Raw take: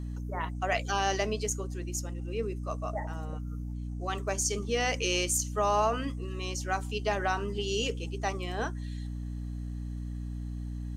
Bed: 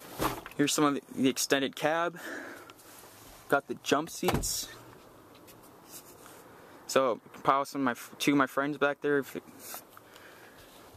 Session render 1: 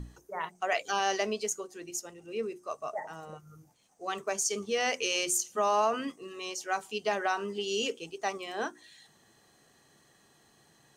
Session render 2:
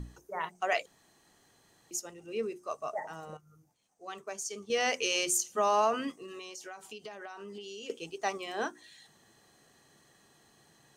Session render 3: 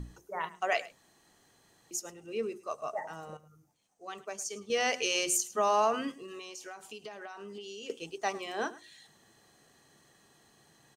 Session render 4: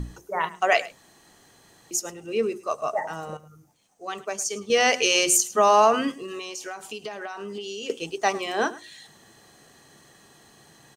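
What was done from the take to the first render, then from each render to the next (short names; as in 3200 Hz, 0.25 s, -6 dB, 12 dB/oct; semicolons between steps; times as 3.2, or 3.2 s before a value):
notches 60/120/180/240/300/360 Hz
0.86–1.91 room tone; 3.37–4.7 gain -8 dB; 6.12–7.9 compressor 16:1, threshold -40 dBFS
echo 0.106 s -18.5 dB
gain +9.5 dB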